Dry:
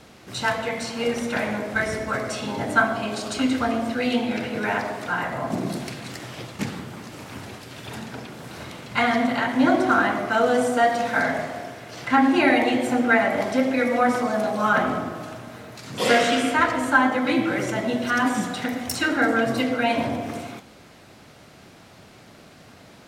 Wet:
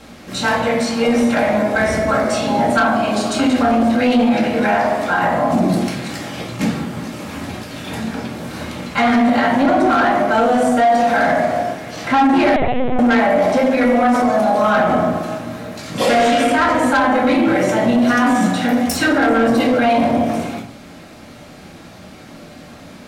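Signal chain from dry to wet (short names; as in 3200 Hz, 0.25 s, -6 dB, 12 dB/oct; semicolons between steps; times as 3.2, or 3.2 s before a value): shoebox room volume 290 m³, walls furnished, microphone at 2.2 m; soft clip -11.5 dBFS, distortion -13 dB; 12.56–12.99 LPC vocoder at 8 kHz pitch kept; dynamic EQ 680 Hz, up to +5 dB, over -32 dBFS, Q 1.5; maximiser +11.5 dB; gain -7 dB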